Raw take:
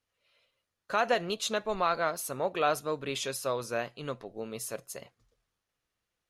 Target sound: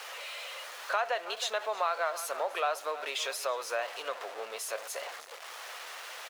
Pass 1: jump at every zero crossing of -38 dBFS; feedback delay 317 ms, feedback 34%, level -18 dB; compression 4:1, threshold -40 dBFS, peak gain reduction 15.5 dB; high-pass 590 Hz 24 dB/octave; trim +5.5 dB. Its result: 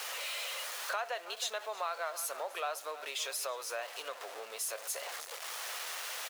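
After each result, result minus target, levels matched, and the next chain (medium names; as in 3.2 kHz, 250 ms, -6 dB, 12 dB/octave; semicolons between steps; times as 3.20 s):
compression: peak gain reduction +6.5 dB; 8 kHz band +5.5 dB
jump at every zero crossing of -38 dBFS; feedback delay 317 ms, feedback 34%, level -18 dB; compression 4:1, threshold -31 dBFS, peak gain reduction 8.5 dB; high-pass 590 Hz 24 dB/octave; trim +5.5 dB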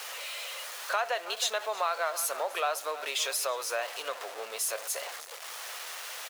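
8 kHz band +5.0 dB
jump at every zero crossing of -38 dBFS; feedback delay 317 ms, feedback 34%, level -18 dB; compression 4:1, threshold -31 dBFS, peak gain reduction 8.5 dB; high-pass 590 Hz 24 dB/octave; treble shelf 5.2 kHz -10.5 dB; trim +5.5 dB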